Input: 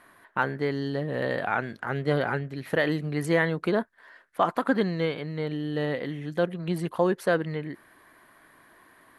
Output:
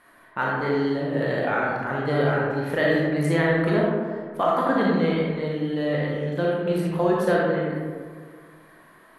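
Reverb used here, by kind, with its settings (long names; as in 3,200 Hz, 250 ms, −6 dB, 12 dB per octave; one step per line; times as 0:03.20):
comb and all-pass reverb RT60 1.8 s, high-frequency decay 0.35×, pre-delay 0 ms, DRR −4.5 dB
level −2 dB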